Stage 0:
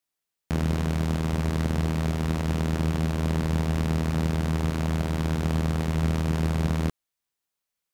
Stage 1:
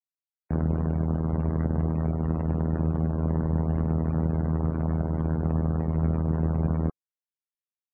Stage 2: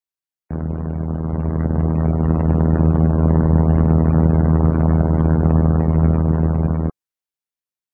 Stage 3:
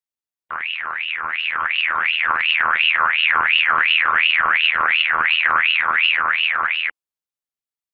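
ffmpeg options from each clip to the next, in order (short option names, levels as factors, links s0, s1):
-af "afftdn=nr=35:nf=-34"
-af "dynaudnorm=f=270:g=13:m=4.47,volume=1.12"
-af "aeval=exprs='val(0)*sin(2*PI*2000*n/s+2000*0.4/2.8*sin(2*PI*2.8*n/s))':c=same"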